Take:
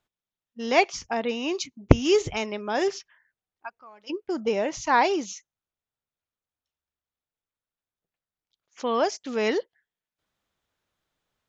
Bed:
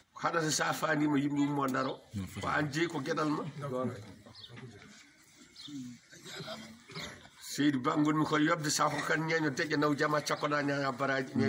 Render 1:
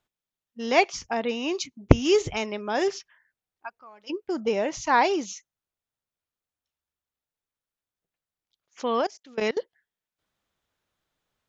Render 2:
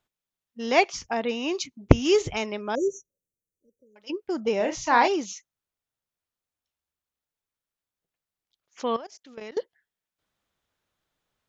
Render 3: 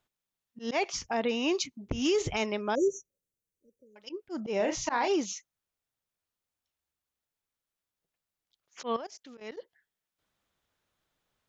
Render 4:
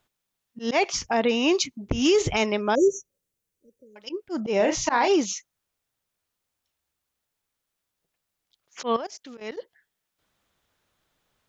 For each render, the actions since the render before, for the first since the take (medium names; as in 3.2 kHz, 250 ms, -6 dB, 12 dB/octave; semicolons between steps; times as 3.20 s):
9.01–9.57 s: level held to a coarse grid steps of 24 dB
2.75–3.96 s: brick-wall FIR band-stop 590–5700 Hz; 4.57–5.08 s: doubling 33 ms -6.5 dB; 8.96–9.52 s: compression 16:1, threshold -35 dBFS
slow attack 118 ms; peak limiter -19.5 dBFS, peak gain reduction 10.5 dB
trim +7 dB